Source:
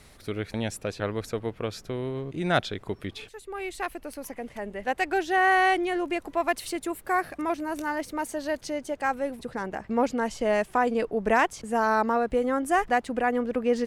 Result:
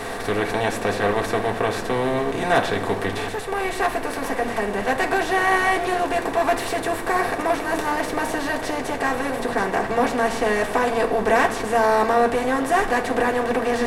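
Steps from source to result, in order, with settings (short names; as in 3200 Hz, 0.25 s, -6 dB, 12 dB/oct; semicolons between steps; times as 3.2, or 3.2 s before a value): per-bin compression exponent 0.4; reverb RT60 0.85 s, pre-delay 3 ms, DRR -1.5 dB; gain -4.5 dB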